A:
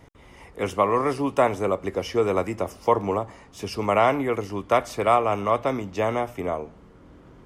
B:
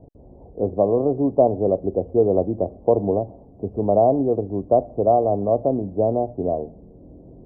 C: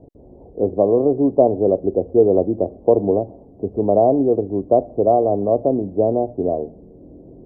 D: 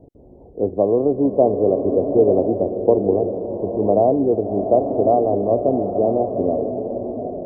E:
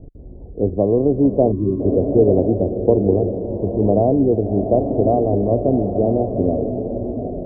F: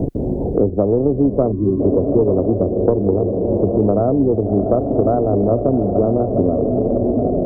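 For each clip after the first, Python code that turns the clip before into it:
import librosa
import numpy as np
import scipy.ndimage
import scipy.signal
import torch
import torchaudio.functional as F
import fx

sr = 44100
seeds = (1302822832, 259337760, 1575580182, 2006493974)

y1 = scipy.signal.sosfilt(scipy.signal.ellip(4, 1.0, 60, 700.0, 'lowpass', fs=sr, output='sos'), x)
y1 = F.gain(torch.from_numpy(y1), 5.5).numpy()
y2 = fx.peak_eq(y1, sr, hz=360.0, db=6.5, octaves=1.5)
y2 = F.gain(torch.from_numpy(y2), -1.5).numpy()
y3 = fx.rev_bloom(y2, sr, seeds[0], attack_ms=960, drr_db=4.5)
y3 = F.gain(torch.from_numpy(y3), -1.5).numpy()
y4 = fx.spec_box(y3, sr, start_s=1.52, length_s=0.29, low_hz=400.0, high_hz=950.0, gain_db=-24)
y4 = fx.tilt_eq(y4, sr, slope=-4.5)
y4 = F.gain(torch.from_numpy(y4), -5.0).numpy()
y5 = fx.tracing_dist(y4, sr, depth_ms=0.071)
y5 = fx.band_squash(y5, sr, depth_pct=100)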